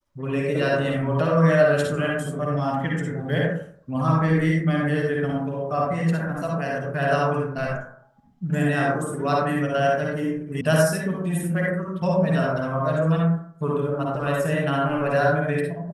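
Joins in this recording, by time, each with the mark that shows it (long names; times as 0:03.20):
0:10.61: cut off before it has died away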